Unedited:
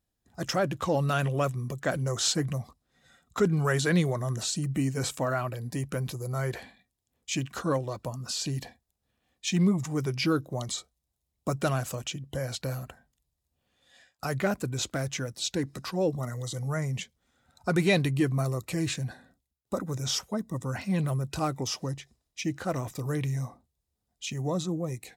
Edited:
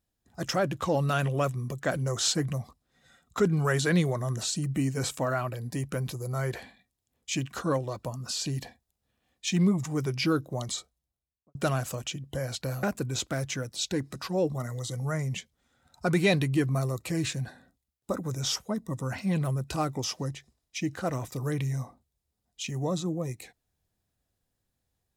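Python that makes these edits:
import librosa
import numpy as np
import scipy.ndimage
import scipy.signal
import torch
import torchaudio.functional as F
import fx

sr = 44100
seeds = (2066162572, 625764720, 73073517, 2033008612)

y = fx.studio_fade_out(x, sr, start_s=10.78, length_s=0.77)
y = fx.edit(y, sr, fx.cut(start_s=12.83, length_s=1.63), tone=tone)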